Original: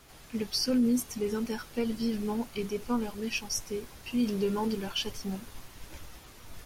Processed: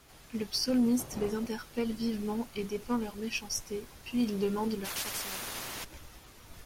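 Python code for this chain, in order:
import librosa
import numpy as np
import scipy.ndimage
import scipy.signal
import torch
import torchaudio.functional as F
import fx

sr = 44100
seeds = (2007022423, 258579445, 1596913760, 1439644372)

y = fx.dmg_wind(x, sr, seeds[0], corner_hz=490.0, level_db=-31.0, at=(0.98, 1.48), fade=0.02)
y = fx.cheby_harmonics(y, sr, harmonics=(3, 4), levels_db=(-22, -34), full_scale_db=-17.5)
y = fx.spectral_comp(y, sr, ratio=10.0, at=(4.84, 5.83), fade=0.02)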